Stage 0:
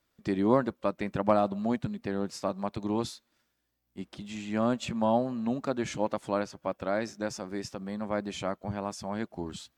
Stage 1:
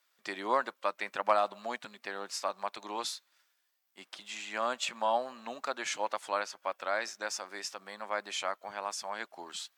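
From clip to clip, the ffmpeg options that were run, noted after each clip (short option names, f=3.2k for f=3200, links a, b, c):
-af "highpass=970,volume=4.5dB"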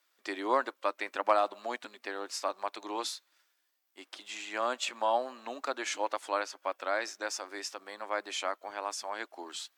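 -af "lowshelf=f=230:t=q:w=3:g=-7.5"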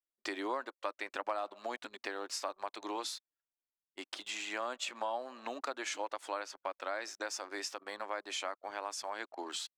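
-af "anlmdn=0.000631,acompressor=threshold=-43dB:ratio=3,volume=5dB"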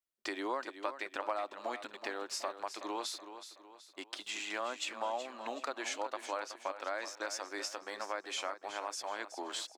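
-af "aecho=1:1:374|748|1122|1496:0.282|0.121|0.0521|0.0224"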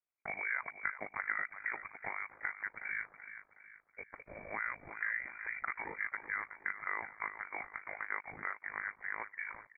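-af "lowpass=f=2.2k:t=q:w=0.5098,lowpass=f=2.2k:t=q:w=0.6013,lowpass=f=2.2k:t=q:w=0.9,lowpass=f=2.2k:t=q:w=2.563,afreqshift=-2600,aeval=exprs='val(0)*sin(2*PI*26*n/s)':c=same,volume=2.5dB"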